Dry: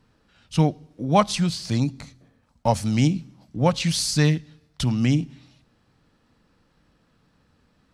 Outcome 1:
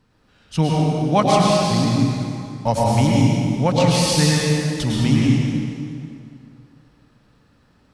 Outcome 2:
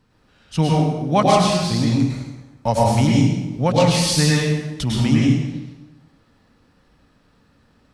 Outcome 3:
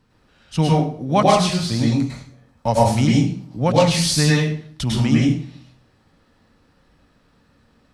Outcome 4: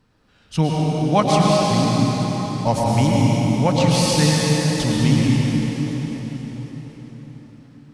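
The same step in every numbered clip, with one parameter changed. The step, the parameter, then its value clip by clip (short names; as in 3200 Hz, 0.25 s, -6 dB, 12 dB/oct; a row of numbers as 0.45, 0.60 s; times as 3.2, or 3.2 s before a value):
plate-style reverb, RT60: 2.5, 1.1, 0.51, 5.3 s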